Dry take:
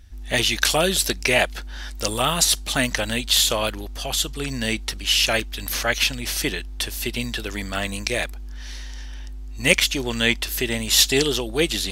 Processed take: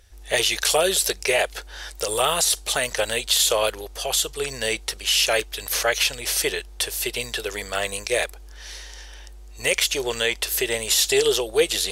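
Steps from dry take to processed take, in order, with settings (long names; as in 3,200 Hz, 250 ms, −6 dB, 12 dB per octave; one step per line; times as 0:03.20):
parametric band 9,300 Hz +5.5 dB 1.1 octaves
brickwall limiter −9 dBFS, peak gain reduction 9 dB
low shelf with overshoot 340 Hz −8 dB, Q 3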